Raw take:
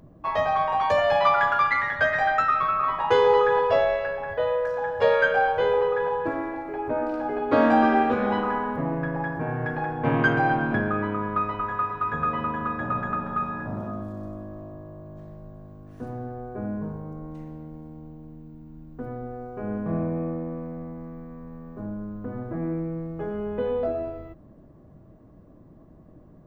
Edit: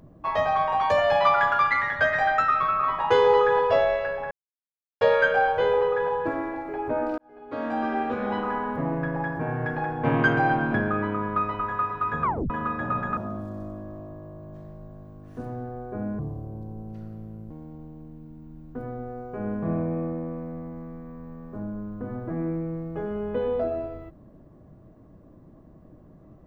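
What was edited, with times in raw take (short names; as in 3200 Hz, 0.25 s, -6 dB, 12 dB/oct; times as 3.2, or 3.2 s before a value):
4.31–5.01 mute
7.18–8.87 fade in
12.23 tape stop 0.27 s
13.17–13.8 cut
16.82–17.74 speed 70%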